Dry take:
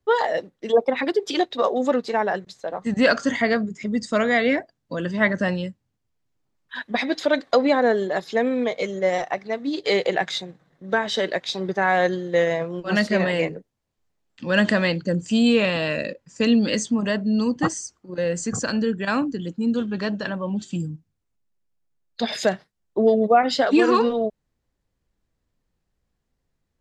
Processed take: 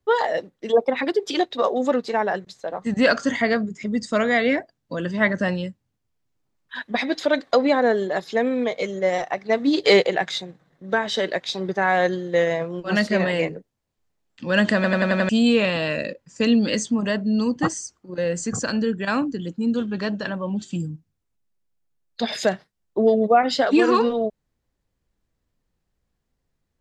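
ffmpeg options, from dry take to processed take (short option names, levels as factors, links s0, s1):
-filter_complex "[0:a]asplit=3[s0][s1][s2];[s0]afade=t=out:st=9.48:d=0.02[s3];[s1]acontrast=71,afade=t=in:st=9.48:d=0.02,afade=t=out:st=10.01:d=0.02[s4];[s2]afade=t=in:st=10.01:d=0.02[s5];[s3][s4][s5]amix=inputs=3:normalize=0,asplit=7[s6][s7][s8][s9][s10][s11][s12];[s6]atrim=end=14.842[s13];[s7]atrim=start=14.748:end=14.842[s14];[s8]atrim=start=14.748:end=14.842[s15];[s9]atrim=start=14.748:end=14.842[s16];[s10]atrim=start=14.748:end=14.842[s17];[s11]atrim=start=14.748:end=14.842[s18];[s12]atrim=start=15.288[s19];[s13][s14]acrossfade=d=0.004:c1=hsin:c2=hsin[s20];[s20][s15]acrossfade=d=0.004:c1=hsin:c2=hsin[s21];[s21][s16]acrossfade=d=0.004:c1=hsin:c2=hsin[s22];[s22][s17]acrossfade=d=0.004:c1=hsin:c2=hsin[s23];[s23][s18]acrossfade=d=0.004:c1=hsin:c2=hsin[s24];[s24][s19]acrossfade=d=0.004:c1=hsin:c2=hsin"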